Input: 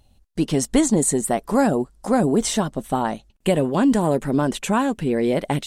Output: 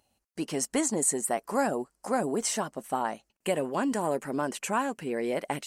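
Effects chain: HPF 630 Hz 6 dB/oct; bell 3600 Hz -11.5 dB 0.31 oct; gain -4 dB

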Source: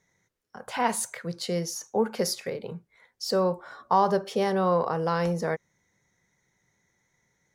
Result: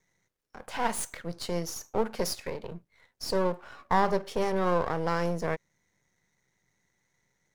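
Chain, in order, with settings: half-wave gain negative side -12 dB

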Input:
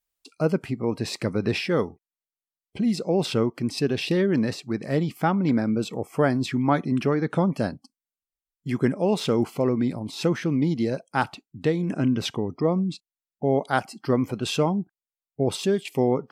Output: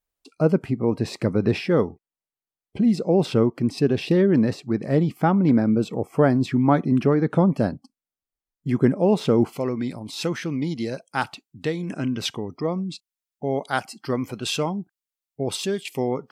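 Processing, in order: tilt shelf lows +4.5 dB, about 1400 Hz, from 9.52 s lows -3.5 dB

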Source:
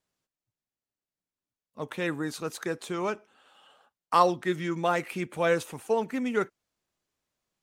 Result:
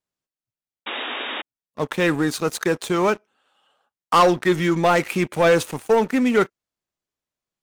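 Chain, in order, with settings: sample leveller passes 3; painted sound noise, 0.86–1.42, 220–3800 Hz -29 dBFS

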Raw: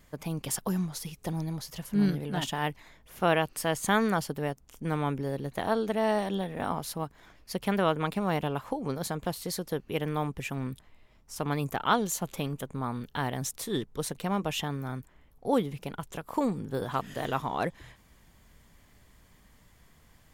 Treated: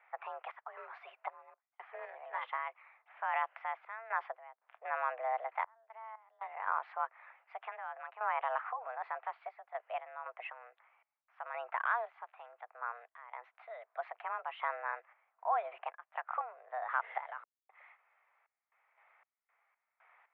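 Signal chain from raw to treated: limiter -23.5 dBFS, peak gain reduction 11.5 dB; random-step tremolo 3.9 Hz, depth 100%; mistuned SSB +230 Hz 470–2100 Hz; gain +4.5 dB

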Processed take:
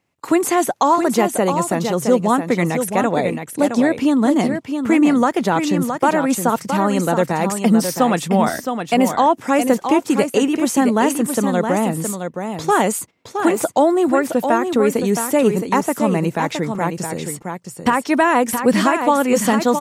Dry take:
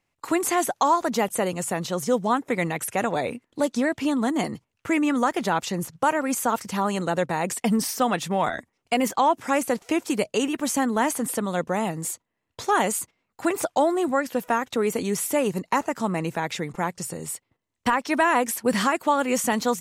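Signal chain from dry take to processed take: HPF 190 Hz 6 dB/oct; low shelf 480 Hz +9.5 dB; echo 0.667 s -7 dB; gain +3 dB

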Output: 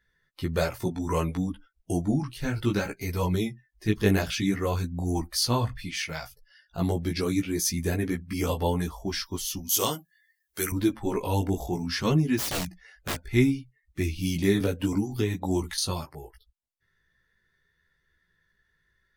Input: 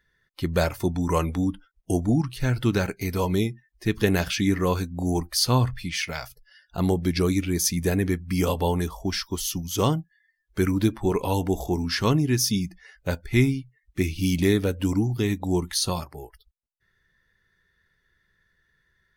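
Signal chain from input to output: 12.37–13.33 wrapped overs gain 21.5 dB; chorus voices 2, 0.61 Hz, delay 16 ms, depth 4.2 ms; 9.69–10.72 RIAA curve recording; 14.6–15.78 three-band squash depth 100%

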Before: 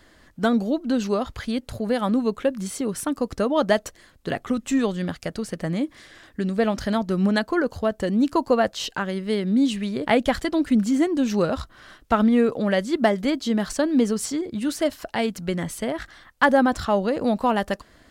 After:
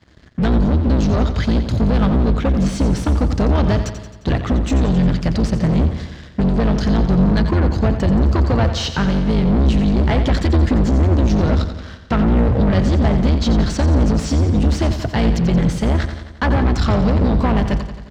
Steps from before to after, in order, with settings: octaver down 2 oct, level +3 dB; HPF 59 Hz 24 dB/oct; tone controls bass +11 dB, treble +15 dB; sample leveller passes 1; limiter -7.5 dBFS, peak gain reduction 9.5 dB; sample leveller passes 3; air absorption 200 m; on a send: feedback echo 88 ms, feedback 59%, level -10 dB; on the sum: gain -4 dB

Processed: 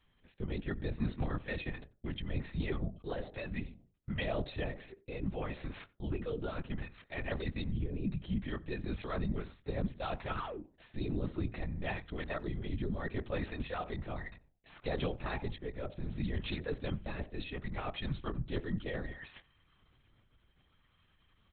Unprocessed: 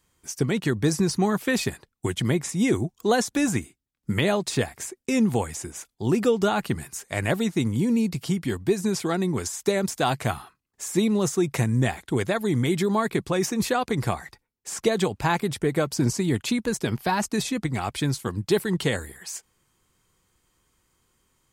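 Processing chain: bell 810 Hz -3.5 dB 0.45 oct; comb 1.6 ms, depth 78%; de-hum 122.2 Hz, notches 8; reverse; compressor 12:1, threshold -32 dBFS, peak gain reduction 17.5 dB; reverse; rotary speaker horn 0.65 Hz; painted sound fall, 10.36–10.62, 250–1700 Hz -42 dBFS; on a send at -15.5 dB: reverb RT60 0.35 s, pre-delay 3 ms; on the sum: LPC vocoder at 8 kHz whisper; speakerphone echo 90 ms, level -25 dB

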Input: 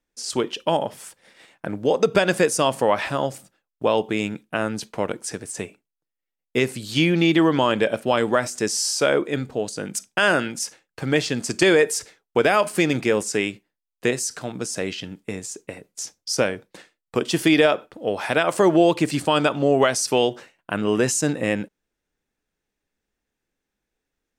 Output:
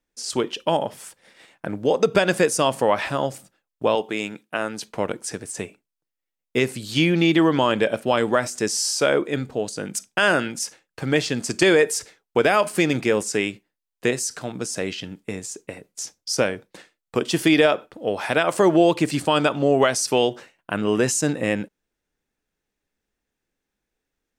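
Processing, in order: 3.95–4.88 HPF 370 Hz 6 dB/oct

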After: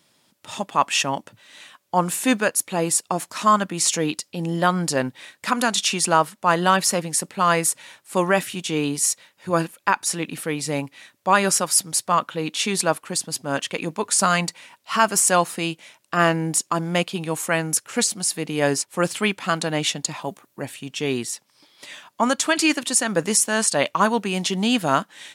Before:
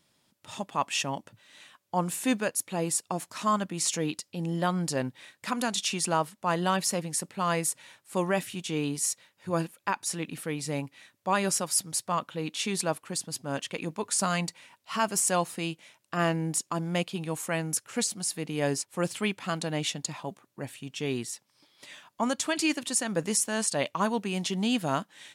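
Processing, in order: dynamic EQ 1400 Hz, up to +4 dB, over -41 dBFS, Q 1.8; HPF 170 Hz 6 dB/oct; 20.21–20.62 high shelf 12000 Hz +10.5 dB; gain +8 dB

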